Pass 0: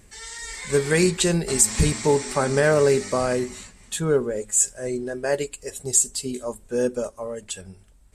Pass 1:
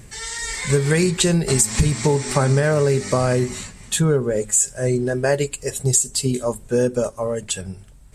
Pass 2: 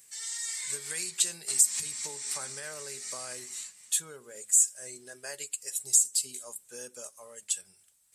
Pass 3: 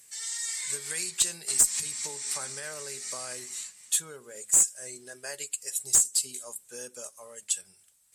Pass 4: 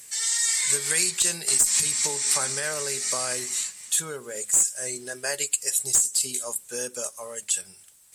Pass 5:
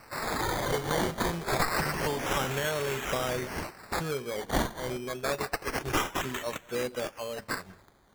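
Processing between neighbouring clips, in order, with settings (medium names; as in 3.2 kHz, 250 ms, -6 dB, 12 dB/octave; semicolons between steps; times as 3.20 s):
peaking EQ 130 Hz +11.5 dB 0.54 oct; compression 5:1, threshold -22 dBFS, peak gain reduction 11 dB; trim +7.5 dB
differentiator; trim -4.5 dB
one-sided clip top -17 dBFS, bottom -12.5 dBFS; trim +2 dB
in parallel at +3 dB: compressor with a negative ratio -30 dBFS, ratio -0.5; on the sum: bit crusher 11-bit
tilt EQ -2.5 dB/octave; decimation with a swept rate 13×, swing 60% 0.27 Hz; speakerphone echo 190 ms, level -25 dB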